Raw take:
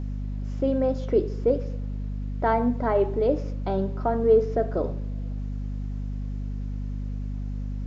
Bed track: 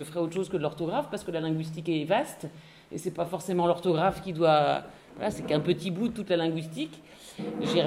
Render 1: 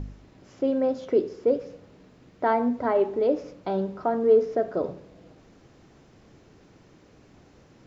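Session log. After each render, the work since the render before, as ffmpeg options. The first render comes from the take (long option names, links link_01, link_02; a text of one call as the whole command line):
ffmpeg -i in.wav -af "bandreject=frequency=50:width_type=h:width=4,bandreject=frequency=100:width_type=h:width=4,bandreject=frequency=150:width_type=h:width=4,bandreject=frequency=200:width_type=h:width=4,bandreject=frequency=250:width_type=h:width=4" out.wav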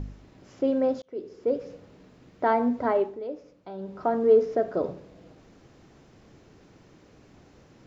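ffmpeg -i in.wav -filter_complex "[0:a]asplit=4[link_01][link_02][link_03][link_04];[link_01]atrim=end=1.02,asetpts=PTS-STARTPTS,afade=type=out:start_time=1.016:duration=0.004:curve=hsin[link_05];[link_02]atrim=start=1.02:end=3.19,asetpts=PTS-STARTPTS,afade=type=in:duration=0.7,afade=type=out:start_time=1.89:duration=0.28:silence=0.251189[link_06];[link_03]atrim=start=3.19:end=3.78,asetpts=PTS-STARTPTS,volume=-12dB[link_07];[link_04]atrim=start=3.78,asetpts=PTS-STARTPTS,afade=type=in:duration=0.28:silence=0.251189[link_08];[link_05][link_06][link_07][link_08]concat=n=4:v=0:a=1" out.wav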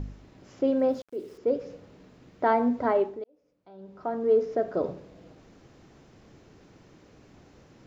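ffmpeg -i in.wav -filter_complex "[0:a]asettb=1/sr,asplit=3[link_01][link_02][link_03];[link_01]atrim=end=0.794[link_04];[link_02]atrim=start=0.79:end=1.38,asetpts=PTS-STARTPTS,afade=type=in:duration=0.004:curve=qsin,afade=type=out:start_time=0.586:duration=0.004:curve=qsin,aeval=exprs='val(0)*gte(abs(val(0)),0.00224)':channel_layout=same[link_05];[link_03]atrim=start=1.376[link_06];[link_04][link_05]acrossfade=duration=0.004:curve1=hsin:curve2=qsin[link_07];[link_07][link_06]acrossfade=duration=0.004:curve1=qsin:curve2=hsin,asplit=2[link_08][link_09];[link_08]atrim=end=3.24,asetpts=PTS-STARTPTS,afade=type=out:start_time=3.236:duration=0.004:curve=hsin[link_10];[link_09]atrim=start=3.24,asetpts=PTS-STARTPTS,afade=type=in:duration=1.66[link_11];[link_10][link_11]concat=n=2:v=0:a=1" out.wav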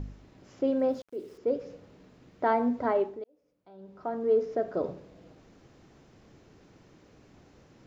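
ffmpeg -i in.wav -af "volume=-2.5dB" out.wav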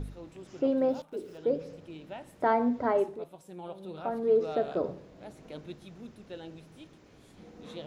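ffmpeg -i in.wav -i bed.wav -filter_complex "[1:a]volume=-17.5dB[link_01];[0:a][link_01]amix=inputs=2:normalize=0" out.wav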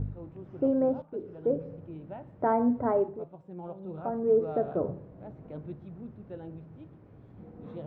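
ffmpeg -i in.wav -af "lowpass=1200,equalizer=frequency=110:width_type=o:width=1.2:gain=11" out.wav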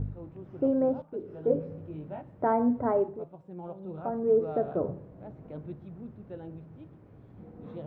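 ffmpeg -i in.wav -filter_complex "[0:a]asettb=1/sr,asplit=3[link_01][link_02][link_03];[link_01]atrim=end=1.284[link_04];[link_02]atrim=start=1.28:end=2.22,asetpts=PTS-STARTPTS,afade=type=in:duration=0.004:curve=qsin,afade=type=out:start_time=0.936:duration=0.004:curve=qsin,asplit=2[link_05][link_06];[link_06]adelay=20,volume=-2.5dB[link_07];[link_05][link_07]amix=inputs=2:normalize=0,atrim=end_sample=41454[link_08];[link_03]atrim=start=2.216[link_09];[link_04][link_08]acrossfade=duration=0.004:curve1=hsin:curve2=qsin[link_10];[link_10][link_09]acrossfade=duration=0.004:curve1=qsin:curve2=hsin" out.wav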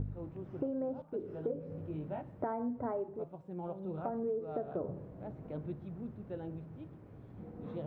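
ffmpeg -i in.wav -af "acompressor=threshold=-33dB:ratio=10" out.wav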